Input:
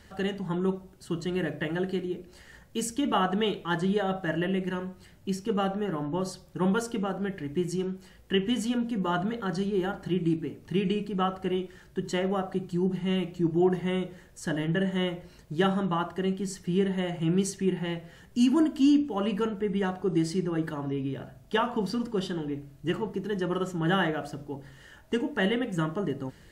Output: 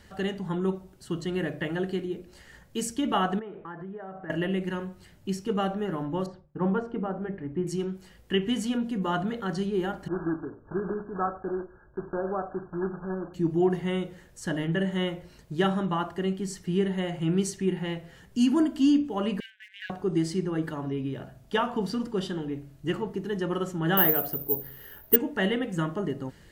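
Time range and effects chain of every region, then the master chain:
0:03.39–0:04.30: low-pass filter 1,800 Hz 24 dB per octave + low-shelf EQ 130 Hz −8.5 dB + downward compressor 8 to 1, threshold −36 dBFS
0:06.26–0:07.67: downward expander −47 dBFS + low-pass filter 1,400 Hz + mains-hum notches 50/100/150/200/250/300/350/400 Hz
0:10.08–0:13.34: one scale factor per block 3 bits + linear-phase brick-wall low-pass 1,700 Hz + parametric band 170 Hz −8 dB 1.2 octaves
0:19.40–0:19.90: linear-prediction vocoder at 8 kHz pitch kept + leveller curve on the samples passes 1 + linear-phase brick-wall high-pass 1,500 Hz
0:23.97–0:25.16: low-pass filter 6,800 Hz + parametric band 420 Hz +10 dB 0.22 octaves + bad sample-rate conversion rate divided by 3×, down filtered, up zero stuff
whole clip: no processing

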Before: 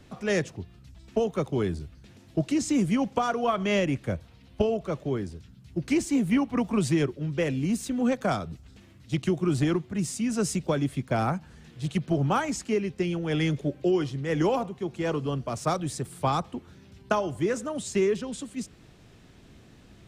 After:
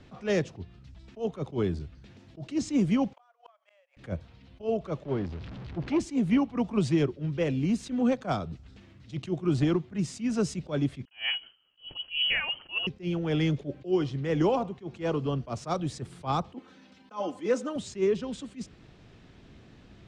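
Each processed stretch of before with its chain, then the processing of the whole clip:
0:03.13–0:03.97: running median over 9 samples + Butterworth high-pass 540 Hz 72 dB per octave + gate with flip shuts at −22 dBFS, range −36 dB
0:05.05–0:06.00: converter with a step at zero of −36.5 dBFS + low-pass filter 3,900 Hz + saturating transformer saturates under 450 Hz
0:11.05–0:12.87: voice inversion scrambler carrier 3,100 Hz + noise gate with hold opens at −37 dBFS, closes at −39 dBFS
0:16.54–0:17.76: high-pass filter 270 Hz + comb filter 3.9 ms, depth 84%
whole clip: low-pass filter 4,900 Hz 12 dB per octave; dynamic equaliser 1,800 Hz, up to −5 dB, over −43 dBFS, Q 1.5; level that may rise only so fast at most 260 dB per second

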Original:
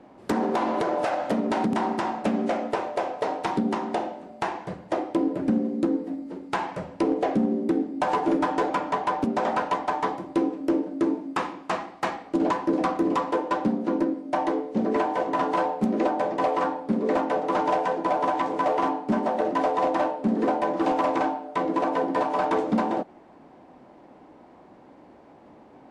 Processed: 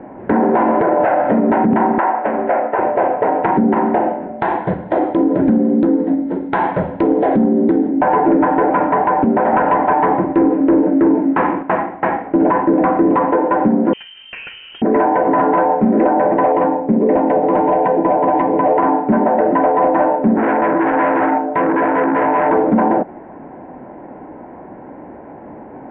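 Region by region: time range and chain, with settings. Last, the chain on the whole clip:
0:01.98–0:02.79: band-pass filter 550–2,700 Hz + highs frequency-modulated by the lows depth 0.17 ms
0:04.39–0:07.90: downward compressor 3 to 1, threshold −25 dBFS + flat-topped bell 4,600 Hz +14 dB 1.2 octaves
0:09.53–0:11.63: high-pass filter 45 Hz + leveller curve on the samples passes 1
0:13.93–0:14.82: voice inversion scrambler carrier 3,400 Hz + downward compressor 10 to 1, threshold −32 dBFS
0:16.52–0:18.78: parametric band 1,400 Hz −9.5 dB 0.99 octaves + notch filter 4,700 Hz, Q 20
0:20.36–0:22.50: double-tracking delay 18 ms −3 dB + saturating transformer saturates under 1,500 Hz
whole clip: inverse Chebyshev low-pass filter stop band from 4,900 Hz, stop band 50 dB; notch filter 1,200 Hz, Q 5.7; boost into a limiter +21 dB; level −5 dB

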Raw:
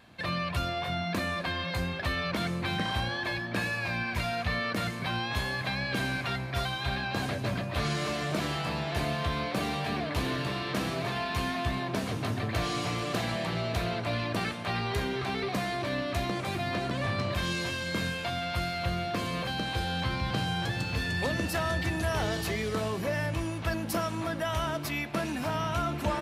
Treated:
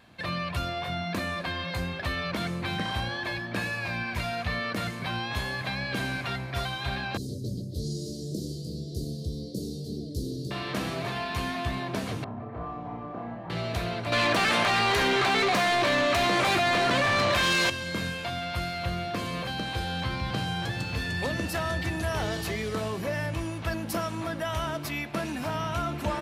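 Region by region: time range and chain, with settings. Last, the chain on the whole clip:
0:07.17–0:10.51: elliptic band-stop filter 440–4,700 Hz + parametric band 1,200 Hz −6 dB 0.4 octaves
0:12.24–0:13.50: low-pass with resonance 930 Hz, resonance Q 1.6 + tuned comb filter 59 Hz, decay 1.6 s, mix 70% + flutter between parallel walls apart 5.1 metres, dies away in 0.47 s
0:14.12–0:17.70: mid-hump overdrive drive 20 dB, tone 5,800 Hz, clips at −16.5 dBFS + envelope flattener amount 100%
whole clip: no processing

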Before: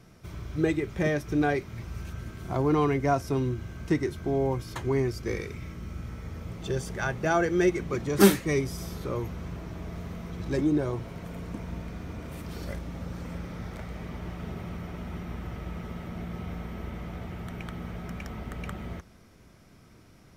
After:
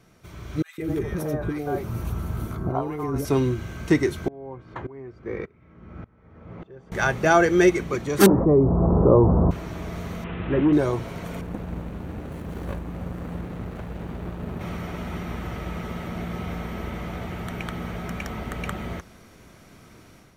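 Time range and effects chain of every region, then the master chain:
0:00.62–0:03.25: flat-topped bell 3,800 Hz −10 dB 2.5 octaves + compressor whose output falls as the input rises −31 dBFS + three-band delay without the direct sound highs, lows, mids 160/240 ms, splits 520/1,600 Hz
0:04.28–0:06.92: low-pass filter 1,500 Hz + low-shelf EQ 71 Hz −9.5 dB + tremolo with a ramp in dB swelling 1.7 Hz, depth 25 dB
0:08.26–0:09.51: Butterworth low-pass 1,000 Hz + envelope flattener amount 70%
0:10.24–0:10.73: linear delta modulator 16 kbit/s, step −40 dBFS + notch filter 2,200 Hz, Q 24
0:11.41–0:14.61: parametric band 4,600 Hz −14.5 dB 1.4 octaves + windowed peak hold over 33 samples
whole clip: low-shelf EQ 230 Hz −5.5 dB; notch filter 5,100 Hz, Q 12; automatic gain control gain up to 8.5 dB

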